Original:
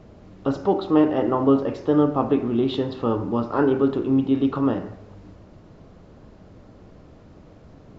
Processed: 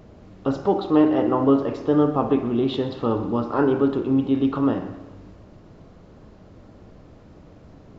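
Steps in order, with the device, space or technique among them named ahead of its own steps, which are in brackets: multi-head tape echo (multi-head echo 62 ms, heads first and second, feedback 57%, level -18 dB; wow and flutter 15 cents)

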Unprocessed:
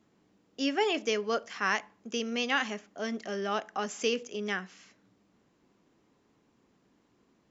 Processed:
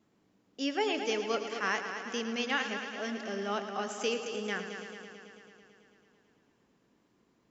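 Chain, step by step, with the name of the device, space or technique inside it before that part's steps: multi-head tape echo (multi-head echo 0.11 s, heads first and second, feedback 68%, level -11.5 dB; wow and flutter 17 cents); gain -3 dB

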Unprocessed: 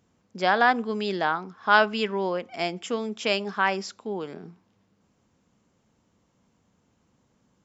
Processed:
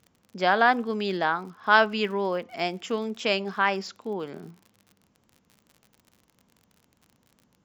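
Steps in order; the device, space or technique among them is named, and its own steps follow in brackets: lo-fi chain (LPF 6400 Hz 12 dB/oct; wow and flutter; crackle 57/s -41 dBFS)

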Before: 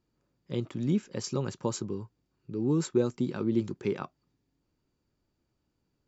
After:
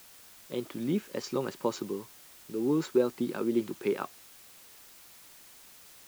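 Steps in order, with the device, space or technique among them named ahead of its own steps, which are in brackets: dictaphone (BPF 280–4100 Hz; AGC; wow and flutter; white noise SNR 20 dB); gain -8.5 dB

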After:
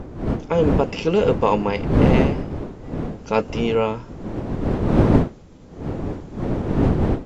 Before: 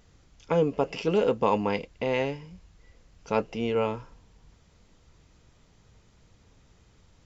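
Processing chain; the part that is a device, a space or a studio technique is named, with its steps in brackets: 3.34–3.75 high shelf 5200 Hz +6.5 dB; smartphone video outdoors (wind noise 300 Hz -26 dBFS; AGC gain up to 6.5 dB; AAC 64 kbps 32000 Hz)

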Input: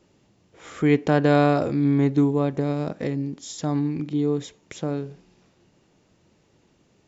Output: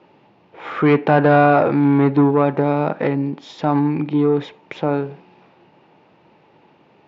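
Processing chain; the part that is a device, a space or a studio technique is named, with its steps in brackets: overdrive pedal into a guitar cabinet (overdrive pedal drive 19 dB, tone 1000 Hz, clips at -6.5 dBFS; speaker cabinet 86–4500 Hz, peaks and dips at 150 Hz +4 dB, 870 Hz +8 dB, 2500 Hz +5 dB); dynamic EQ 1400 Hz, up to +6 dB, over -40 dBFS, Q 2.4; gain +2 dB

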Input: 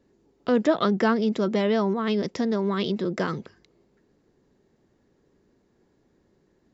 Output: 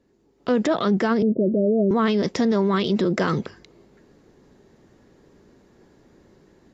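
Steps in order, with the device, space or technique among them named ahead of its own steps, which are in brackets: 1.22–1.91 Chebyshev low-pass 650 Hz, order 8; low-bitrate web radio (AGC gain up to 10.5 dB; limiter -13 dBFS, peak gain reduction 10.5 dB; AAC 48 kbps 32000 Hz)

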